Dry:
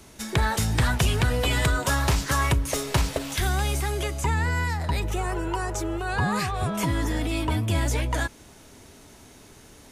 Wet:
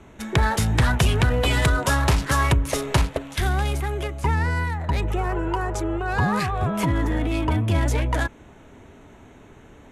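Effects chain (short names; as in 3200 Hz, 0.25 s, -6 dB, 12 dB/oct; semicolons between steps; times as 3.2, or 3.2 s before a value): Wiener smoothing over 9 samples; Chebyshev low-pass 12000 Hz, order 3; 3.04–4.94 upward expander 1.5:1, over -35 dBFS; gain +3.5 dB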